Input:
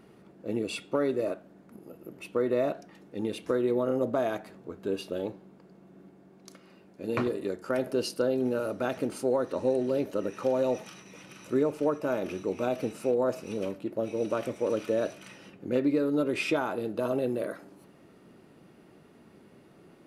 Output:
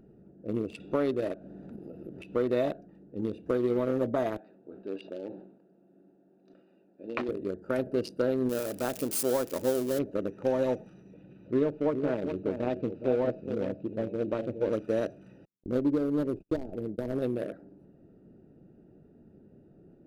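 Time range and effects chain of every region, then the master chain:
0:00.80–0:02.77: upward compression, threshold −35 dBFS + parametric band 3,700 Hz +5.5 dB 1.3 octaves + one half of a high-frequency compander encoder only
0:04.37–0:07.29: loudspeaker in its box 350–5,100 Hz, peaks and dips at 440 Hz −5 dB, 2,700 Hz +4 dB, 3,800 Hz +4 dB + level that may fall only so fast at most 76 dB per second
0:08.49–0:09.99: spike at every zero crossing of −23 dBFS + low-shelf EQ 130 Hz −7.5 dB
0:11.14–0:14.73: low-pass filter 4,300 Hz 24 dB per octave + parametric band 1,200 Hz −5 dB 0.72 octaves + single-tap delay 417 ms −7 dB
0:15.45–0:17.22: running median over 41 samples + noise gate −40 dBFS, range −46 dB + parametric band 2,000 Hz −14 dB 0.93 octaves
whole clip: adaptive Wiener filter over 41 samples; low-shelf EQ 63 Hz +11.5 dB

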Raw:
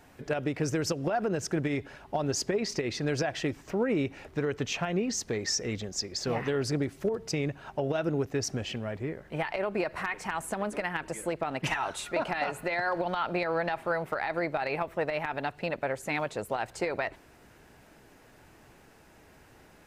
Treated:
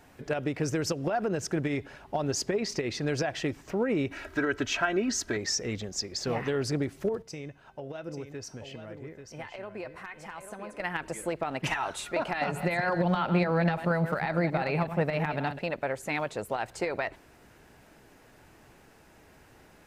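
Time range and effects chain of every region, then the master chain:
0:04.11–0:05.37: parametric band 1,500 Hz +12 dB 0.36 octaves + comb filter 3.1 ms, depth 74% + one half of a high-frequency compander encoder only
0:07.22–0:10.80: tuned comb filter 510 Hz, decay 0.41 s, mix 70% + single-tap delay 838 ms −8 dB
0:12.41–0:15.59: delay that plays each chunk backwards 123 ms, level −9 dB + parametric band 170 Hz +13 dB 0.92 octaves
whole clip: no processing

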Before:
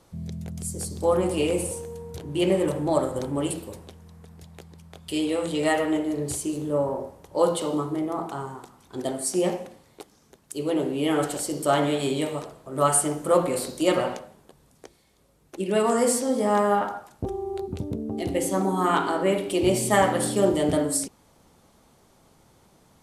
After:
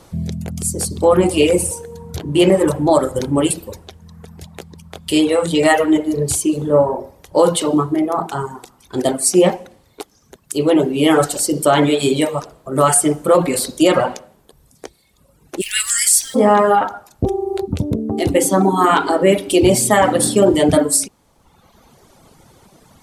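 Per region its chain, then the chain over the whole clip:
0:15.60–0:16.34: Butterworth high-pass 1,600 Hz 48 dB per octave + background noise pink −58 dBFS + high-shelf EQ 3,200 Hz +10.5 dB
whole clip: reverb reduction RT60 1.2 s; boost into a limiter +14 dB; level −1.5 dB

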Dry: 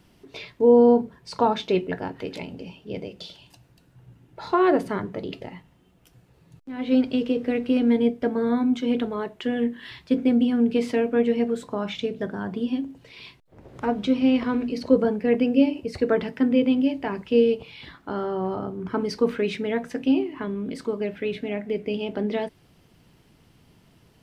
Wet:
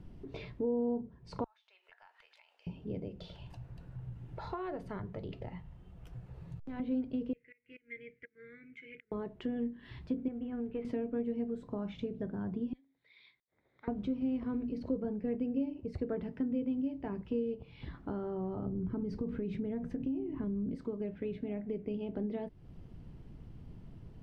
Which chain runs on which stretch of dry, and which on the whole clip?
0:01.44–0:02.67: Bessel high-pass filter 1,500 Hz, order 6 + downward compressor, threshold −49 dBFS
0:03.20–0:06.80: parametric band 270 Hz −11.5 dB 1.5 octaves + multiband upward and downward compressor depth 40%
0:07.33–0:09.12: drawn EQ curve 160 Hz 0 dB, 230 Hz −21 dB, 330 Hz −11 dB, 490 Hz −28 dB, 730 Hz −28 dB, 1,400 Hz +4 dB, 2,500 Hz +7 dB, 3,700 Hz −3 dB, 7,600 Hz +11 dB + gate with flip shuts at −22 dBFS, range −25 dB + pair of resonant band-passes 1,000 Hz, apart 2.1 octaves
0:10.28–0:10.85: variable-slope delta modulation 64 kbit/s + low-pass filter 2,700 Hz 24 dB per octave + parametric band 200 Hz −12.5 dB 1.7 octaves
0:12.73–0:13.88: pair of resonant band-passes 2,800 Hz, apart 0.8 octaves + high-frequency loss of the air 71 metres
0:18.66–0:20.75: low-shelf EQ 380 Hz +10.5 dB + downward compressor 3 to 1, threshold −24 dBFS
whole clip: spectral tilt −4 dB per octave; downward compressor 2.5 to 1, threshold −35 dBFS; level −5 dB

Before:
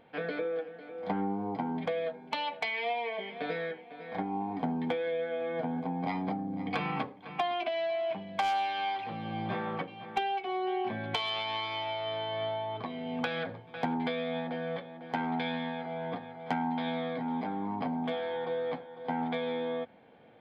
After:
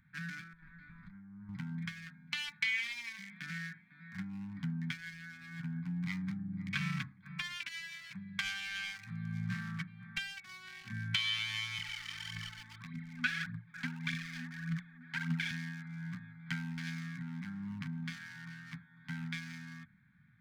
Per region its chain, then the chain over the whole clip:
0:00.53–0:01.49: compressor whose output falls as the input rises −40 dBFS + tube saturation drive 32 dB, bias 0.65
0:11.78–0:15.51: high-pass filter 140 Hz 24 dB per octave + phase shifter 1.7 Hz, delay 4.1 ms, feedback 66% + high-frequency loss of the air 110 metres
whole clip: adaptive Wiener filter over 15 samples; elliptic band-stop filter 170–1,600 Hz, stop band 80 dB; level +3.5 dB

